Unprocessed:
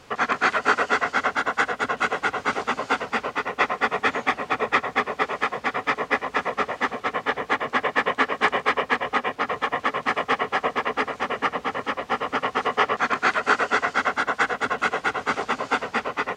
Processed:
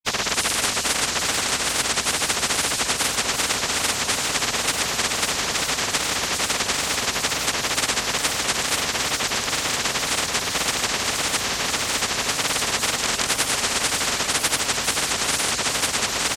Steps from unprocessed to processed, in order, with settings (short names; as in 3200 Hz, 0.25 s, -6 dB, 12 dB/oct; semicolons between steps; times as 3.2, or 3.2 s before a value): high shelf 4000 Hz +5.5 dB; on a send: feedback echo 0.872 s, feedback 41%, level -10 dB; on the sum: grains, pitch spread up and down by 0 st; wow and flutter 140 cents; spectral compressor 10:1